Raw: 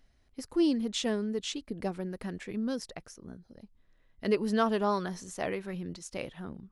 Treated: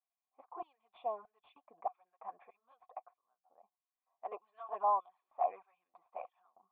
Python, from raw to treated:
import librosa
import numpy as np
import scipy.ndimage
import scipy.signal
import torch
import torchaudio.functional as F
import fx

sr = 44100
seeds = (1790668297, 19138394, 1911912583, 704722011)

y = fx.filter_lfo_highpass(x, sr, shape='square', hz=1.6, low_hz=820.0, high_hz=3200.0, q=0.98)
y = fx.env_flanger(y, sr, rest_ms=11.9, full_db=-32.0)
y = fx.formant_cascade(y, sr, vowel='a')
y = y * librosa.db_to_amplitude(14.5)